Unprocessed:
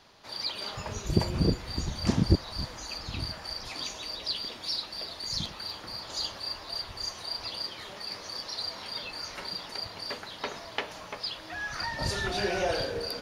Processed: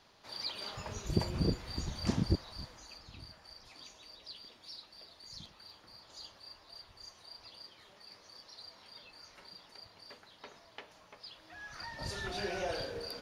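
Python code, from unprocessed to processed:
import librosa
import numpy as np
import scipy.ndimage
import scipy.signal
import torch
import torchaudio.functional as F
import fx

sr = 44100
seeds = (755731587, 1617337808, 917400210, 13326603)

y = fx.gain(x, sr, db=fx.line((2.13, -6.0), (3.18, -16.5), (11.09, -16.5), (12.31, -8.0)))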